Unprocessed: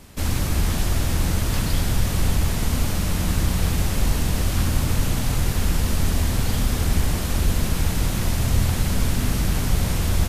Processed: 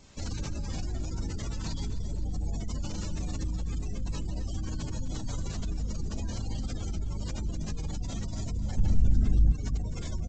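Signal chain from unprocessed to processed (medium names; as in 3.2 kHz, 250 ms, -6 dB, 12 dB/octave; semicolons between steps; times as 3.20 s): treble shelf 5.2 kHz +10.5 dB; feedback comb 52 Hz, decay 0.78 s, harmonics all, mix 80%; peak limiter -22 dBFS, peak gain reduction 7.5 dB; spectral gate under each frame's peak -25 dB strong; 8.77–9.52 s: tilt EQ -2.5 dB/octave; feedback delay 258 ms, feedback 51%, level -13 dB; G.722 64 kbps 16 kHz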